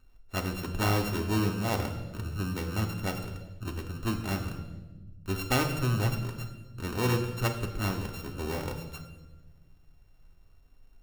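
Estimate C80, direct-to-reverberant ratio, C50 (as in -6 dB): 10.5 dB, 3.0 dB, 8.5 dB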